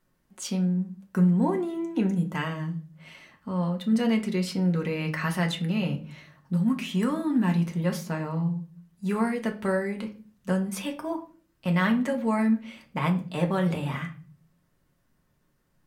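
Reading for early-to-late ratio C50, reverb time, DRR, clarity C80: 13.0 dB, 0.40 s, 2.5 dB, 18.5 dB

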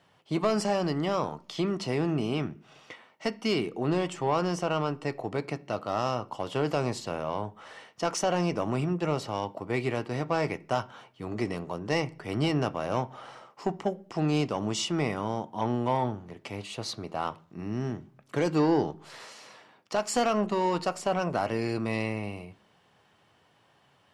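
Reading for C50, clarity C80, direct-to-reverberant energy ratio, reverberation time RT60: 21.5 dB, 26.5 dB, 10.5 dB, 0.50 s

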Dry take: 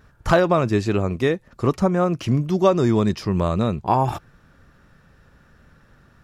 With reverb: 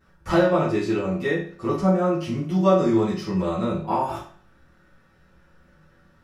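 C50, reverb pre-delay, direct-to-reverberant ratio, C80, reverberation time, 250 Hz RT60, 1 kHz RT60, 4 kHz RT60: 5.5 dB, 5 ms, -11.0 dB, 10.0 dB, 0.45 s, 0.45 s, 0.45 s, 0.45 s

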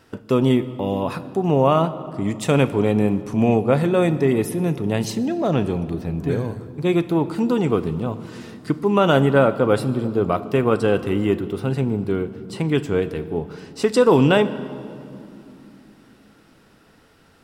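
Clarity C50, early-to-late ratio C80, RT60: 14.5 dB, 15.5 dB, 2.9 s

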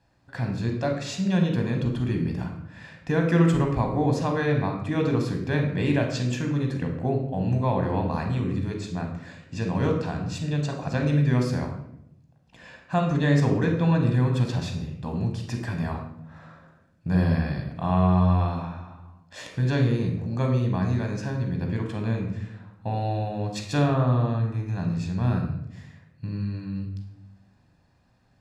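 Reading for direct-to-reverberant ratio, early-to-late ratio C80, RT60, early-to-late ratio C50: 2.5 dB, 8.5 dB, 0.80 s, 6.0 dB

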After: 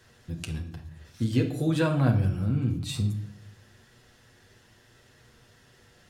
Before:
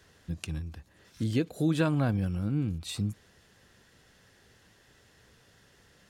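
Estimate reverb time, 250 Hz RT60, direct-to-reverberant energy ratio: 0.65 s, 0.90 s, 1.0 dB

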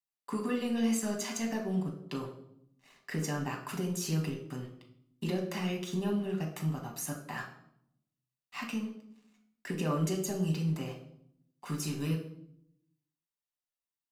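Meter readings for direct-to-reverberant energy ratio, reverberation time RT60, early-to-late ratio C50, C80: 0.5 dB, 0.70 s, 7.5 dB, 10.5 dB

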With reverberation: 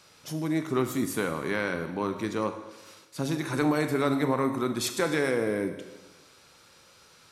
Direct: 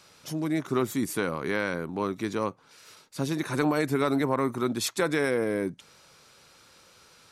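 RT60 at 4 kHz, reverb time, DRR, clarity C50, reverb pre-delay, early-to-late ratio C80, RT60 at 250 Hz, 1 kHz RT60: 1.2 s, 1.2 s, 7.0 dB, 9.0 dB, 22 ms, 10.5 dB, 1.2 s, 1.2 s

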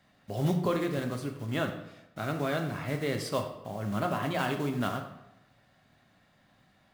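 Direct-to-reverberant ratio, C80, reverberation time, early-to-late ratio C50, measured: 3.5 dB, 10.5 dB, 0.90 s, 7.5 dB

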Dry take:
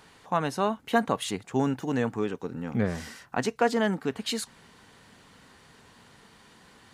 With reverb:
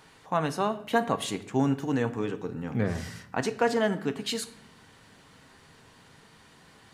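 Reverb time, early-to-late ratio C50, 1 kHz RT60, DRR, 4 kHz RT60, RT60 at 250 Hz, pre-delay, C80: 0.70 s, 15.0 dB, 0.60 s, 8.5 dB, 0.55 s, 1.2 s, 6 ms, 17.0 dB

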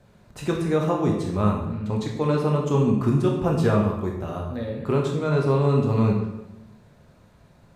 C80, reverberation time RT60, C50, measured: 6.5 dB, 0.95 s, 4.5 dB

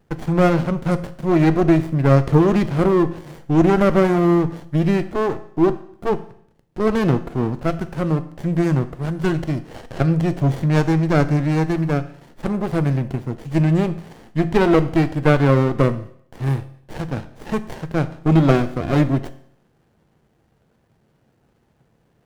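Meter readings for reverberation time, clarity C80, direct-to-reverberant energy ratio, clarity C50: 0.65 s, 18.0 dB, 11.0 dB, 15.5 dB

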